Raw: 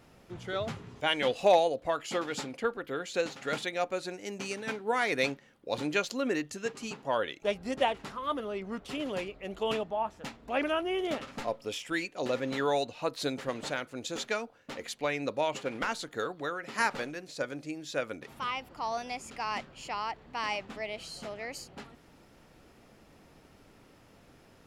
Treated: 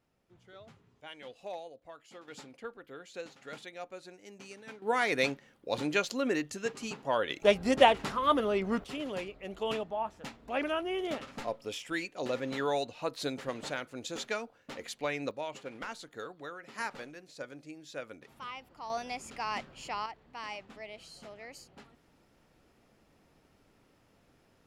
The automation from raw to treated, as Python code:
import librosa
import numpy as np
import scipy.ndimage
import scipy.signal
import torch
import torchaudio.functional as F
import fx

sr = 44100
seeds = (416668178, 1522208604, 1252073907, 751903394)

y = fx.gain(x, sr, db=fx.steps((0.0, -19.0), (2.28, -12.0), (4.82, 0.0), (7.3, 6.5), (8.84, -2.5), (15.31, -8.5), (18.9, -1.0), (20.06, -8.0)))